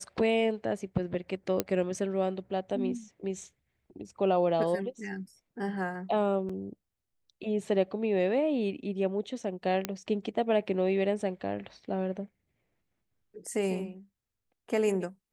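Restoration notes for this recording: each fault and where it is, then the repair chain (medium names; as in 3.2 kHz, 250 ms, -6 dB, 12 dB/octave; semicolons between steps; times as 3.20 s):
1.60 s: pop -12 dBFS
6.49 s: dropout 4.7 ms
9.85 s: pop -13 dBFS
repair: de-click; interpolate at 6.49 s, 4.7 ms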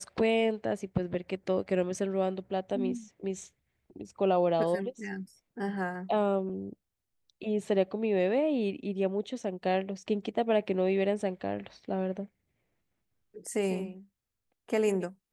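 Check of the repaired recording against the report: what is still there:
nothing left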